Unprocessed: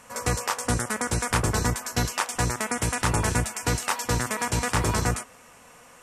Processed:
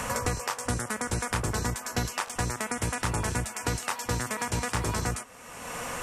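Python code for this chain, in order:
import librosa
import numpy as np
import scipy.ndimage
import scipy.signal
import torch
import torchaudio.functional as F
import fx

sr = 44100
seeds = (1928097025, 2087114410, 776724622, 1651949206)

y = fx.buffer_glitch(x, sr, at_s=(0.35, 2.25), block=1024, repeats=1)
y = fx.band_squash(y, sr, depth_pct=100)
y = y * 10.0 ** (-5.0 / 20.0)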